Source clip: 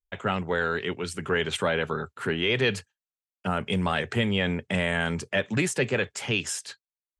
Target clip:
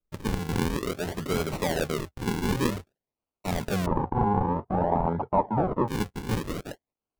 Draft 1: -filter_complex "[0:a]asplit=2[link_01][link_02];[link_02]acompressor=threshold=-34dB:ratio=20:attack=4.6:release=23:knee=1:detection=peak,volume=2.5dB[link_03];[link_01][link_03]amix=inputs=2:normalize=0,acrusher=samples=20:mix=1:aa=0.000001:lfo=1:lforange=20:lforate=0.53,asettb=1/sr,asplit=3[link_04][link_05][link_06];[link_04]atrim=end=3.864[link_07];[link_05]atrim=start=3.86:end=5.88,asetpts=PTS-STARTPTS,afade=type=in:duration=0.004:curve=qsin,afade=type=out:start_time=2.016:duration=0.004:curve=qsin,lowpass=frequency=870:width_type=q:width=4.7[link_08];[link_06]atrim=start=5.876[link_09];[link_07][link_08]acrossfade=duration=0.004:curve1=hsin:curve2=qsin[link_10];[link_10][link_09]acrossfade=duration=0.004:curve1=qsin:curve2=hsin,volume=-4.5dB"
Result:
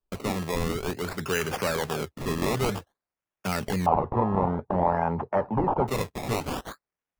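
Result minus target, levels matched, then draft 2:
sample-and-hold swept by an LFO: distortion −8 dB
-filter_complex "[0:a]asplit=2[link_01][link_02];[link_02]acompressor=threshold=-34dB:ratio=20:attack=4.6:release=23:knee=1:detection=peak,volume=2.5dB[link_03];[link_01][link_03]amix=inputs=2:normalize=0,acrusher=samples=48:mix=1:aa=0.000001:lfo=1:lforange=48:lforate=0.53,asettb=1/sr,asplit=3[link_04][link_05][link_06];[link_04]atrim=end=3.864[link_07];[link_05]atrim=start=3.86:end=5.88,asetpts=PTS-STARTPTS,afade=type=in:duration=0.004:curve=qsin,afade=type=out:start_time=2.016:duration=0.004:curve=qsin,lowpass=frequency=870:width_type=q:width=4.7[link_08];[link_06]atrim=start=5.876[link_09];[link_07][link_08]acrossfade=duration=0.004:curve1=hsin:curve2=qsin[link_10];[link_10][link_09]acrossfade=duration=0.004:curve1=qsin:curve2=hsin,volume=-4.5dB"

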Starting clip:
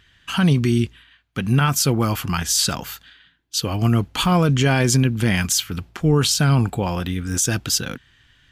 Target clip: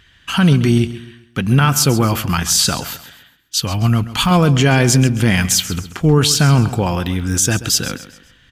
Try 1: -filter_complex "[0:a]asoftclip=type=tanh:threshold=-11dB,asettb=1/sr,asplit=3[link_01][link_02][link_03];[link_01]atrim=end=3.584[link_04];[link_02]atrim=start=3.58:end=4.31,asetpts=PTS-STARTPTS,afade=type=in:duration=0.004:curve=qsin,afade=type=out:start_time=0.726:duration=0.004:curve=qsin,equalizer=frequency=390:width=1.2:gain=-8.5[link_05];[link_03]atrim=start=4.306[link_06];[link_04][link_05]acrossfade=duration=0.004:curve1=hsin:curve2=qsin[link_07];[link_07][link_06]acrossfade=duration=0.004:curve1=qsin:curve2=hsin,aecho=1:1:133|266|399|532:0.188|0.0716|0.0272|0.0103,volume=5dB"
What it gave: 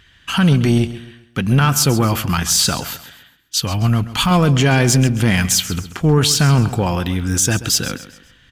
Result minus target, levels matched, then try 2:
soft clipping: distortion +10 dB
-filter_complex "[0:a]asoftclip=type=tanh:threshold=-5dB,asettb=1/sr,asplit=3[link_01][link_02][link_03];[link_01]atrim=end=3.584[link_04];[link_02]atrim=start=3.58:end=4.31,asetpts=PTS-STARTPTS,afade=type=in:duration=0.004:curve=qsin,afade=type=out:start_time=0.726:duration=0.004:curve=qsin,equalizer=frequency=390:width=1.2:gain=-8.5[link_05];[link_03]atrim=start=4.306[link_06];[link_04][link_05]acrossfade=duration=0.004:curve1=hsin:curve2=qsin[link_07];[link_07][link_06]acrossfade=duration=0.004:curve1=qsin:curve2=hsin,aecho=1:1:133|266|399|532:0.188|0.0716|0.0272|0.0103,volume=5dB"

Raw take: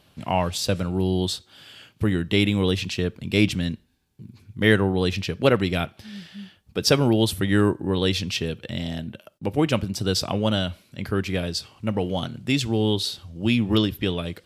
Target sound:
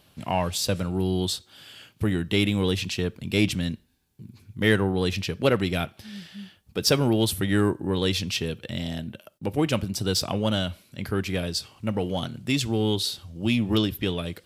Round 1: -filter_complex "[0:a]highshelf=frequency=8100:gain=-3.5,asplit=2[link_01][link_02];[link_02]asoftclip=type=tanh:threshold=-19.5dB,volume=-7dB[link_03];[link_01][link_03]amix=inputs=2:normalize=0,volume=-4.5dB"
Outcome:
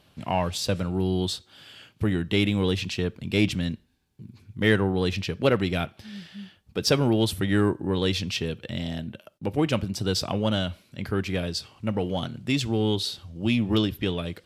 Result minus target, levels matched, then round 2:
8,000 Hz band −4.0 dB
-filter_complex "[0:a]highshelf=frequency=8100:gain=7,asplit=2[link_01][link_02];[link_02]asoftclip=type=tanh:threshold=-19.5dB,volume=-7dB[link_03];[link_01][link_03]amix=inputs=2:normalize=0,volume=-4.5dB"

